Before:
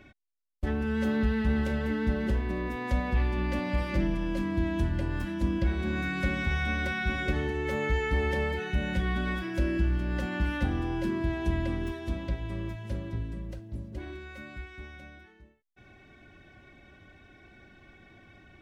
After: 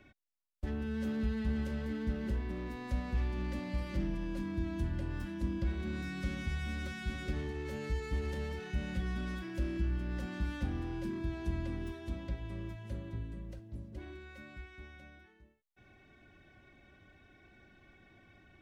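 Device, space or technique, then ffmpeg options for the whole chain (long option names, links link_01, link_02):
one-band saturation: -filter_complex "[0:a]acrossover=split=350|4200[link_01][link_02][link_03];[link_02]asoftclip=type=tanh:threshold=-38.5dB[link_04];[link_01][link_04][link_03]amix=inputs=3:normalize=0,asettb=1/sr,asplit=3[link_05][link_06][link_07];[link_05]atrim=end=12.904[link_08];[link_06]atrim=start=12.9:end=13.46,asetpts=PTS-STARTPTS,afade=type=in:duration=0.004:curve=qsin,afade=type=out:start_time=0.556:duration=0.004:curve=qsin,bandreject=frequency=5300:width=8.2[link_09];[link_07]atrim=start=13.456[link_10];[link_08][link_09]acrossfade=duration=0.004:curve1=hsin:curve2=qsin[link_11];[link_11][link_10]acrossfade=duration=0.004:curve1=qsin:curve2=hsin,volume=-6.5dB"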